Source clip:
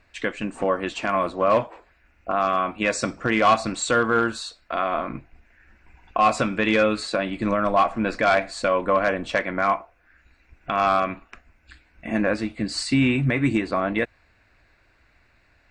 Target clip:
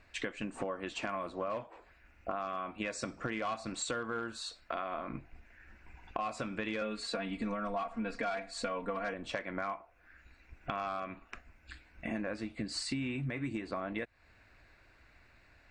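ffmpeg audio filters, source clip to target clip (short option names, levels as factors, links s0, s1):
-filter_complex "[0:a]asettb=1/sr,asplit=3[s0][s1][s2];[s0]atrim=end=6.814[s3];[s1]atrim=start=6.81:end=9.14,asetpts=PTS-STARTPTS,afade=t=in:d=0.004:c=qsin,afade=t=out:st=2.326:d=0.004:c=qsin,aecho=1:1:4.3:0.99,atrim=end_sample=102753[s4];[s2]atrim=start=9.136[s5];[s3][s4]acrossfade=d=0.004:c1=hsin:c2=qsin[s6];[s6][s5]acrossfade=d=0.004:c1=qsin:c2=hsin,acompressor=threshold=0.0224:ratio=6,volume=0.794"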